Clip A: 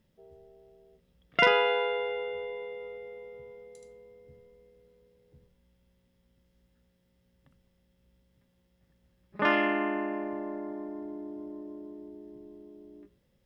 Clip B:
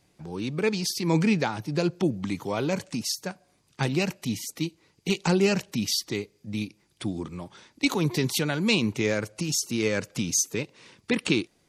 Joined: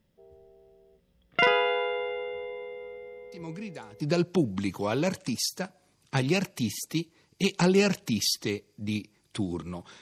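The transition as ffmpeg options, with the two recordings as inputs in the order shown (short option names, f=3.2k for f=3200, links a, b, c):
-filter_complex "[1:a]asplit=2[a][b];[0:a]apad=whole_dur=10.01,atrim=end=10.01,atrim=end=4.002[c];[b]atrim=start=1.658:end=7.67[d];[a]atrim=start=0.98:end=1.66,asetpts=PTS-STARTPTS,volume=-16.5dB,afade=t=in:d=0.004:c=hsin,afade=t=out:st=0.676:d=0.004:c=hsin,adelay=3320[e];[c][d]acrossfade=d=0.004:c1=hsin:c2=hsin[f];[f][e]amix=inputs=2:normalize=0"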